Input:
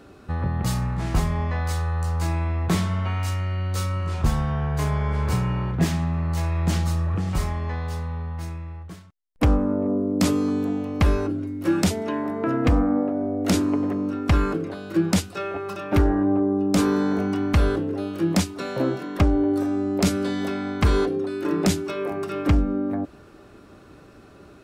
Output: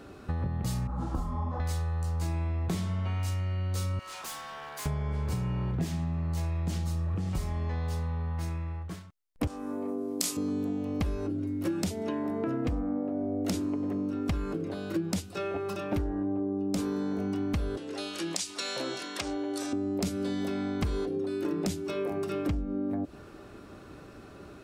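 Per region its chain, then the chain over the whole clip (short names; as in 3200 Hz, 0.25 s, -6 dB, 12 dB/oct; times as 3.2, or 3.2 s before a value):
0.87–1.6 resonant high shelf 1600 Hz -8 dB, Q 3 + comb 3.8 ms, depth 57% + detuned doubles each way 45 cents
3.99–4.86 HPF 940 Hz + high shelf 5800 Hz +6.5 dB + hard clip -35 dBFS
9.47–10.37 HPF 1100 Hz 6 dB/oct + bell 10000 Hz +12 dB 2.3 oct + doubler 28 ms -4 dB
17.77–19.73 weighting filter ITU-R 468 + compressor 2.5:1, threshold -27 dBFS
whole clip: dynamic EQ 1400 Hz, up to -6 dB, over -42 dBFS, Q 0.72; compressor, threshold -28 dBFS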